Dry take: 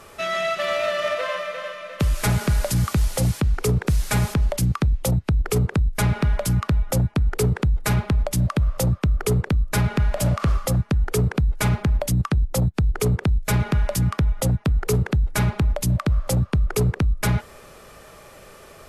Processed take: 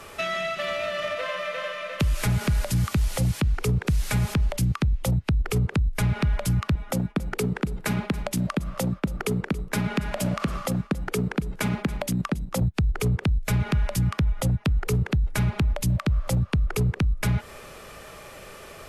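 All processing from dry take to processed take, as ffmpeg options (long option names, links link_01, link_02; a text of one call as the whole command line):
ffmpeg -i in.wav -filter_complex "[0:a]asettb=1/sr,asplit=3[link_01][link_02][link_03];[link_01]atrim=end=6.754[link_04];[link_02]atrim=start=6.75:end=12.61,asetpts=PTS-STARTPTS,afade=type=in:duration=0.004:curve=qsin,afade=type=out:start_time=5.856:duration=0.004:curve=qsin,agate=range=-33dB:threshold=-33dB:ratio=3:release=100:detection=peak,lowshelf=frequency=140:width_type=q:width=1.5:gain=-11.5,aecho=1:1:276:0.126,atrim=end_sample=258426[link_05];[link_03]atrim=start=12.606[link_06];[link_04][link_05]acrossfade=duration=0.004:curve1=hsin:curve2=qsin[link_07];[link_07][link_06]acrossfade=duration=0.004:curve1=qsin:curve2=hsin,acrossover=split=260[link_08][link_09];[link_09]acompressor=threshold=-29dB:ratio=6[link_10];[link_08][link_10]amix=inputs=2:normalize=0,equalizer=frequency=2600:width=1.2:gain=3.5,acompressor=threshold=-22dB:ratio=3,volume=1.5dB" out.wav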